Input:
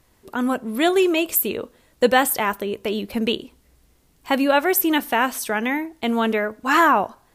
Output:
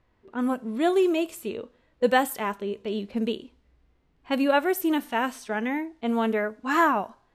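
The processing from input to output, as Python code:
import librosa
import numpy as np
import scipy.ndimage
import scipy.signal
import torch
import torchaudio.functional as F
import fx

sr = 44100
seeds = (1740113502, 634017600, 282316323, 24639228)

y = fx.hpss(x, sr, part='percussive', gain_db=-10)
y = fx.env_lowpass(y, sr, base_hz=2600.0, full_db=-18.0)
y = y * 10.0 ** (-3.5 / 20.0)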